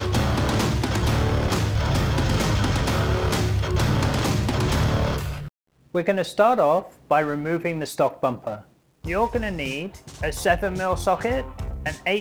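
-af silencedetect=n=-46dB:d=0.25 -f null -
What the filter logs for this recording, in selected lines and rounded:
silence_start: 5.48
silence_end: 5.86 | silence_duration: 0.38
silence_start: 8.67
silence_end: 9.04 | silence_duration: 0.37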